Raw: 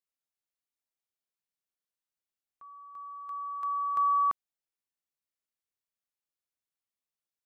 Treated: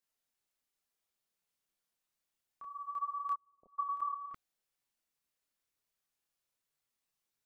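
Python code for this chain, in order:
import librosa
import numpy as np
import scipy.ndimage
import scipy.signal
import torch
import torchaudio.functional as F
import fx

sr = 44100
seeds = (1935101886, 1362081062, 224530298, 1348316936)

y = fx.chorus_voices(x, sr, voices=6, hz=0.54, base_ms=29, depth_ms=4.8, mix_pct=50)
y = fx.steep_lowpass(y, sr, hz=630.0, slope=48, at=(3.34, 3.78), fade=0.02)
y = fx.over_compress(y, sr, threshold_db=-40.0, ratio=-1.0)
y = F.gain(torch.from_numpy(y), 2.0).numpy()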